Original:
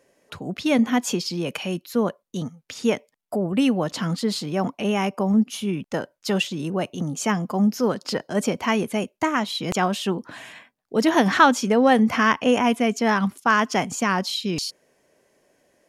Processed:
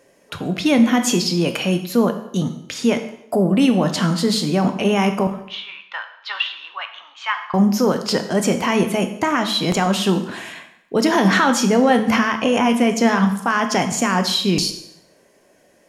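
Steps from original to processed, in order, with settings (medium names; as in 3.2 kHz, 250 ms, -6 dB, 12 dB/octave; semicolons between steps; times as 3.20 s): 5.27–7.54 s: elliptic band-pass 1–3.7 kHz, stop band 80 dB; peak limiter -15 dBFS, peak gain reduction 11.5 dB; plate-style reverb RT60 0.78 s, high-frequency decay 0.9×, DRR 6.5 dB; trim +6.5 dB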